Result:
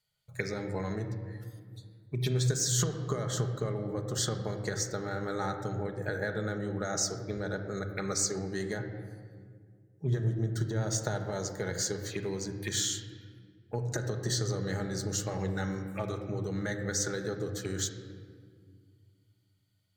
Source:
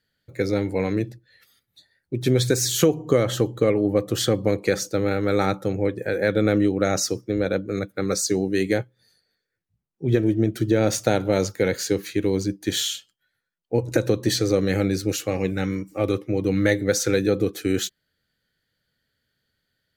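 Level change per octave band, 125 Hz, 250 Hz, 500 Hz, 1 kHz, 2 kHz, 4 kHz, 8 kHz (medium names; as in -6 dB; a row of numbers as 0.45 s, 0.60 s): -6.0 dB, -14.0 dB, -13.5 dB, -8.0 dB, -8.5 dB, -8.0 dB, -4.0 dB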